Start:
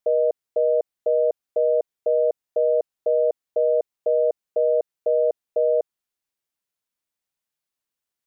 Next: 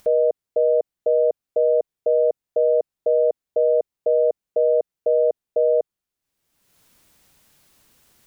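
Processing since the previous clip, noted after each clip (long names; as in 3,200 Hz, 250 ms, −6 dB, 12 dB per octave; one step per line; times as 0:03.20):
low-shelf EQ 350 Hz +9.5 dB
upward compression, threshold −35 dBFS
level −1 dB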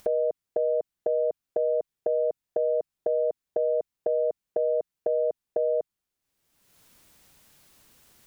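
dynamic equaliser 510 Hz, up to −8 dB, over −31 dBFS, Q 1.1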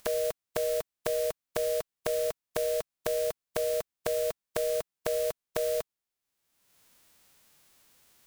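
spectral envelope flattened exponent 0.3
level −4 dB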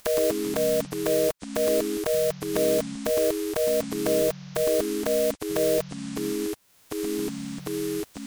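in parallel at 0 dB: brickwall limiter −21 dBFS, peak gain reduction 10.5 dB
on the sum: delay with pitch and tempo change per echo 82 ms, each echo −7 semitones, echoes 3, each echo −6 dB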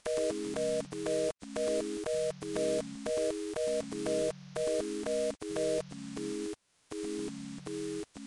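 level −8.5 dB
IMA ADPCM 88 kbit/s 22,050 Hz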